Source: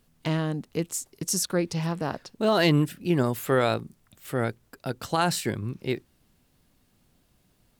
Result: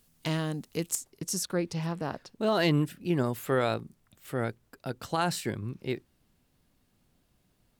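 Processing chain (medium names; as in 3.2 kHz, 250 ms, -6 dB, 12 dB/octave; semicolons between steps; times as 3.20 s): treble shelf 3.8 kHz +10.5 dB, from 0.95 s -2 dB; trim -4 dB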